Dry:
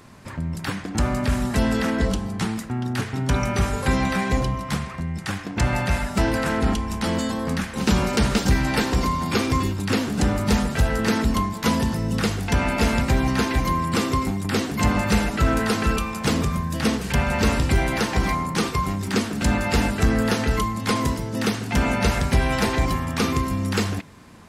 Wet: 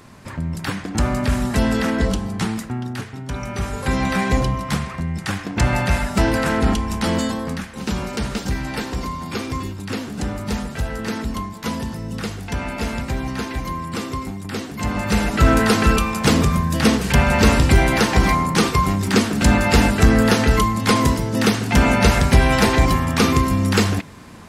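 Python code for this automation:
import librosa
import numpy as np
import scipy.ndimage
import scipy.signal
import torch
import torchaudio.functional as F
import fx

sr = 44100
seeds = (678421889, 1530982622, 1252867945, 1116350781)

y = fx.gain(x, sr, db=fx.line((2.64, 2.5), (3.24, -7.5), (4.21, 3.5), (7.24, 3.5), (7.7, -4.5), (14.8, -4.5), (15.46, 6.0)))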